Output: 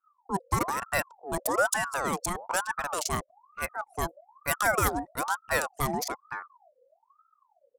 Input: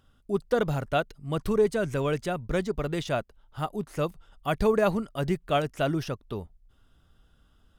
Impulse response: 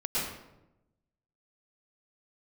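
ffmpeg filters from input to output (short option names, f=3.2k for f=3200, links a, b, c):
-af "anlmdn=1,aexciter=amount=15.3:drive=2.5:freq=5.1k,aeval=exprs='val(0)*sin(2*PI*910*n/s+910*0.45/1.1*sin(2*PI*1.1*n/s))':c=same"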